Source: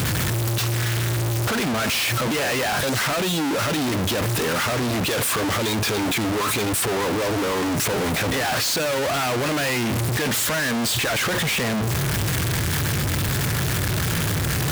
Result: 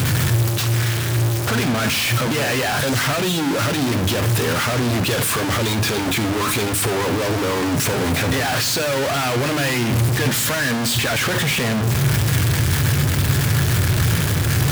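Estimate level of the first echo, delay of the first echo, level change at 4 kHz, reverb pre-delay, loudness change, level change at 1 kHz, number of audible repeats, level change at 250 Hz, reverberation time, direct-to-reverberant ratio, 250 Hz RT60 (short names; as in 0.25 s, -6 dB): none, none, +2.5 dB, 7 ms, +3.0 dB, +1.5 dB, none, +3.0 dB, 0.75 s, 9.0 dB, 1.2 s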